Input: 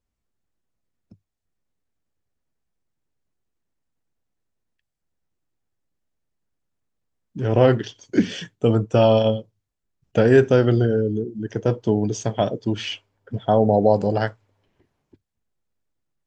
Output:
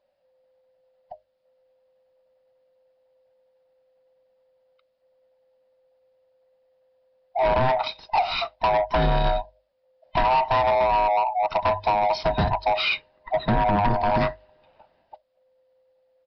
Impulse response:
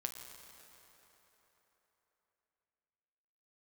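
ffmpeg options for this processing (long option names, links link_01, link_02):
-af "afftfilt=real='real(if(lt(b,1008),b+24*(1-2*mod(floor(b/24),2)),b),0)':imag='imag(if(lt(b,1008),b+24*(1-2*mod(floor(b/24),2)),b),0)':win_size=2048:overlap=0.75,bandreject=frequency=50:width_type=h:width=6,bandreject=frequency=100:width_type=h:width=6,acompressor=threshold=-20dB:ratio=8,aresample=11025,asoftclip=type=tanh:threshold=-24.5dB,aresample=44100,volume=8.5dB"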